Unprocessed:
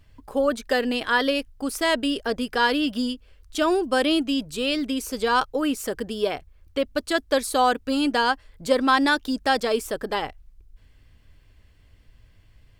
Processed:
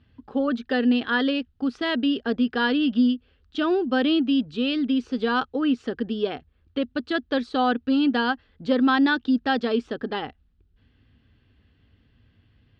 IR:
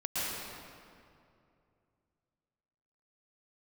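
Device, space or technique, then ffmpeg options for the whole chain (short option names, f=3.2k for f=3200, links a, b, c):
guitar cabinet: -af "highpass=80,equalizer=f=240:t=q:w=4:g=8,equalizer=f=600:t=q:w=4:g=-8,equalizer=f=1k:t=q:w=4:g=-7,equalizer=f=2.2k:t=q:w=4:g=-8,lowpass=f=3.7k:w=0.5412,lowpass=f=3.7k:w=1.3066"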